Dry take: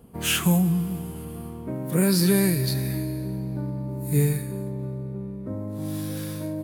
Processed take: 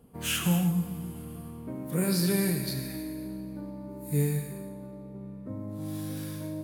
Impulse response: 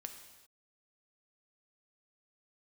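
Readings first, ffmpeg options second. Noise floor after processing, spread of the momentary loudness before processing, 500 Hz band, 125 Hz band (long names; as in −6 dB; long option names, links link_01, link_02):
−43 dBFS, 14 LU, −6.5 dB, −6.5 dB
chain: -filter_complex "[1:a]atrim=start_sample=2205,afade=type=out:start_time=0.35:duration=0.01,atrim=end_sample=15876,asetrate=40572,aresample=44100[link_01];[0:a][link_01]afir=irnorm=-1:irlink=0,volume=-2dB"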